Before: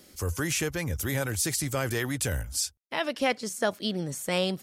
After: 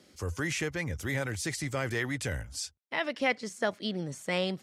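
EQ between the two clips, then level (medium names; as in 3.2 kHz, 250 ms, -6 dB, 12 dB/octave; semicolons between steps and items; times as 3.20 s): high-pass 71 Hz; dynamic bell 2 kHz, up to +7 dB, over -50 dBFS, Q 4.8; distance through air 60 m; -3.0 dB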